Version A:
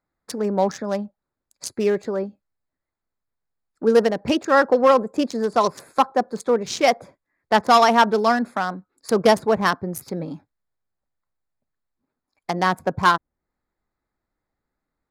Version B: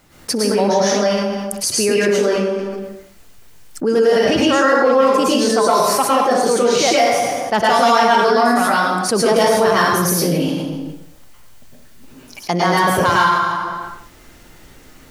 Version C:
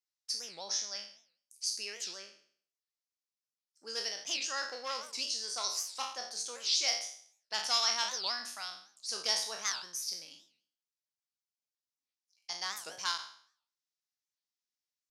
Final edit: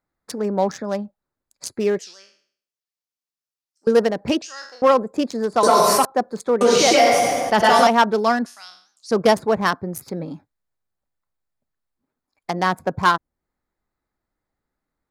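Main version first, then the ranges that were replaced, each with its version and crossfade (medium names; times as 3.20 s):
A
1.99–3.87 s: from C
4.42–4.82 s: from C
5.63–6.05 s: from B
6.61–7.87 s: from B
8.46–9.11 s: from C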